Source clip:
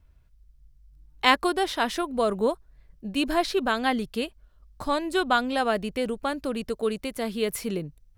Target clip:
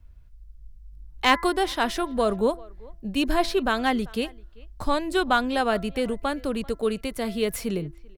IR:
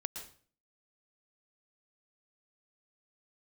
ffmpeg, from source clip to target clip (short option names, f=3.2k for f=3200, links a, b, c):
-filter_complex "[0:a]lowshelf=f=76:g=11,bandreject=f=337.5:t=h:w=4,bandreject=f=675:t=h:w=4,bandreject=f=1.0125k:t=h:w=4,bandreject=f=1.35k:t=h:w=4,bandreject=f=1.6875k:t=h:w=4,bandreject=f=2.025k:t=h:w=4,acrossover=split=160|2700[a][b][c];[c]aeval=exprs='clip(val(0),-1,0.0299)':c=same[d];[a][b][d]amix=inputs=3:normalize=0,asplit=2[e][f];[f]adelay=390,highpass=300,lowpass=3.4k,asoftclip=type=hard:threshold=-14dB,volume=-23dB[g];[e][g]amix=inputs=2:normalize=0,volume=1dB"